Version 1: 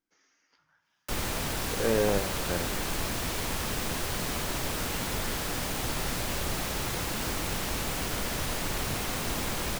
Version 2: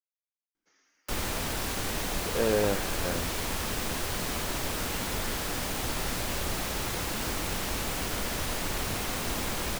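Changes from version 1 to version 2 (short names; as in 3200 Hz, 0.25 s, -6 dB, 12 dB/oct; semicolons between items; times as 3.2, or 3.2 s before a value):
speech: entry +0.55 s; master: add bell 140 Hz -4 dB 0.41 oct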